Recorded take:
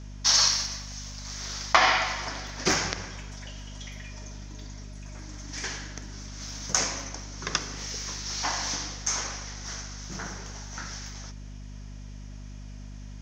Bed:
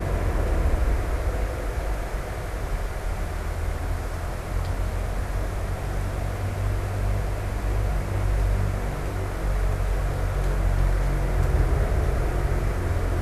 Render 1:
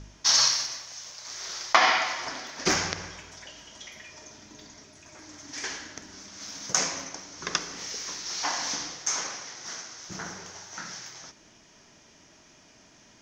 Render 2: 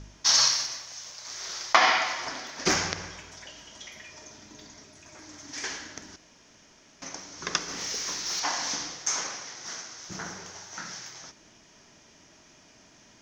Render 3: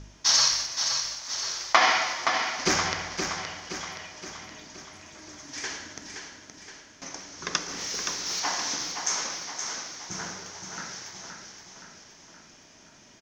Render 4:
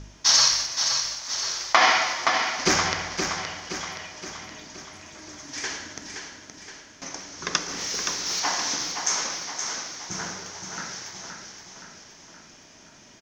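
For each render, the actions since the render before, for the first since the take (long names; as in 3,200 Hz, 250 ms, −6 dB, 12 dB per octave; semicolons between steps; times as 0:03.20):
hum removal 50 Hz, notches 5
0:06.16–0:07.02: fill with room tone; 0:07.68–0:08.40: leveller curve on the samples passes 1
repeating echo 521 ms, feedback 53%, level −6.5 dB
level +3 dB; brickwall limiter −3 dBFS, peak gain reduction 2.5 dB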